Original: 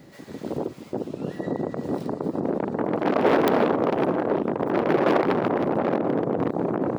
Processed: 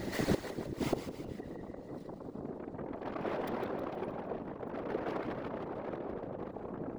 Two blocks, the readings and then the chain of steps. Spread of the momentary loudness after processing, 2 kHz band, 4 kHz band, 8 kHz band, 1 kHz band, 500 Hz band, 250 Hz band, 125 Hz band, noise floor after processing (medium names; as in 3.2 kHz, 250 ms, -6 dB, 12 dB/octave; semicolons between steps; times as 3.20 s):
9 LU, -13.5 dB, -9.0 dB, no reading, -16.0 dB, -15.5 dB, -14.5 dB, -11.0 dB, -48 dBFS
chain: inverted gate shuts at -27 dBFS, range -27 dB; two-band feedback delay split 350 Hz, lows 383 ms, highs 157 ms, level -8 dB; whisper effect; trim +9.5 dB